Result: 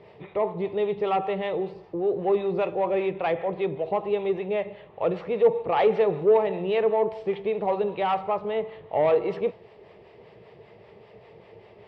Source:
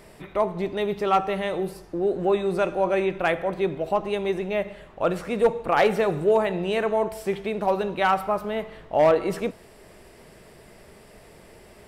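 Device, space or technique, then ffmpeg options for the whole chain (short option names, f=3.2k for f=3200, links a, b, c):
guitar amplifier with harmonic tremolo: -filter_complex "[0:a]acrossover=split=590[a][b];[a]aeval=exprs='val(0)*(1-0.5/2+0.5/2*cos(2*PI*5.1*n/s))':c=same[c];[b]aeval=exprs='val(0)*(1-0.5/2-0.5/2*cos(2*PI*5.1*n/s))':c=same[d];[c][d]amix=inputs=2:normalize=0,asoftclip=type=tanh:threshold=-17.5dB,highpass=100,equalizer=f=110:t=q:w=4:g=7,equalizer=f=260:t=q:w=4:g=-9,equalizer=f=450:t=q:w=4:g=8,equalizer=f=850:t=q:w=4:g=4,equalizer=f=1.5k:t=q:w=4:g=-9,lowpass=f=3.6k:w=0.5412,lowpass=f=3.6k:w=1.3066"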